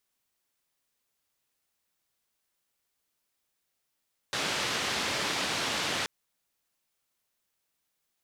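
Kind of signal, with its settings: noise band 100–4200 Hz, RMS -31 dBFS 1.73 s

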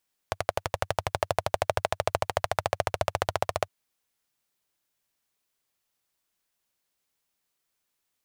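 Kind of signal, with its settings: single-cylinder engine model, changing speed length 3.36 s, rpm 1400, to 1800, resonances 96/630 Hz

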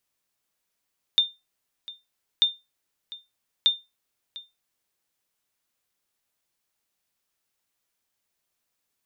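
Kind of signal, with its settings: sonar ping 3.61 kHz, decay 0.22 s, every 1.24 s, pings 3, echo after 0.70 s, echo -19.5 dB -11 dBFS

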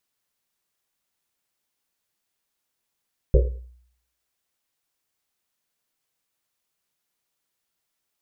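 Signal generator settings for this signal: Risset drum, pitch 61 Hz, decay 0.65 s, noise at 460 Hz, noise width 160 Hz, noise 30%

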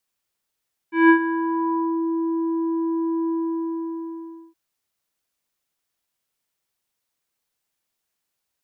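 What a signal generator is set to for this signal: synth note square E4 24 dB/octave, low-pass 770 Hz, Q 2.3, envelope 1.5 oct, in 1.10 s, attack 175 ms, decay 0.09 s, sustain -12.5 dB, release 1.25 s, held 2.37 s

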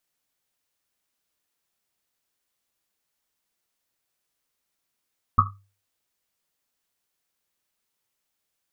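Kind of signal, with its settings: Risset drum, pitch 99 Hz, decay 0.38 s, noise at 1.2 kHz, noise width 160 Hz, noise 65%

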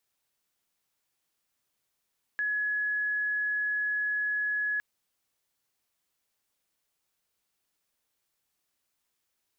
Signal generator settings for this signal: tone sine 1.69 kHz -26.5 dBFS 2.41 s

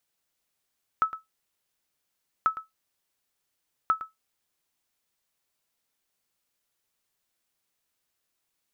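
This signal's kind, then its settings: sonar ping 1.3 kHz, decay 0.16 s, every 1.44 s, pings 3, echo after 0.11 s, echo -14 dB -14 dBFS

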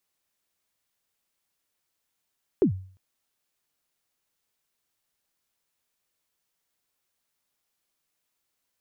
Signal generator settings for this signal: kick drum length 0.35 s, from 440 Hz, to 94 Hz, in 99 ms, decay 0.47 s, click off, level -13.5 dB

